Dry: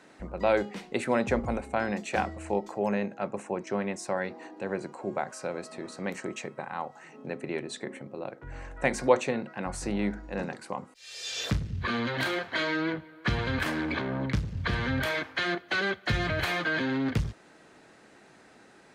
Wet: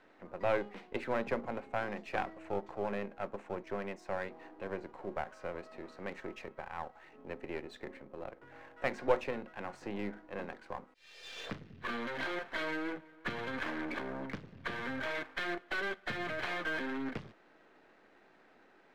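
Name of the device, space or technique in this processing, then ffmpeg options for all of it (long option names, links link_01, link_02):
crystal radio: -af "highpass=250,lowpass=2800,aeval=exprs='if(lt(val(0),0),0.447*val(0),val(0))':channel_layout=same,volume=-4dB"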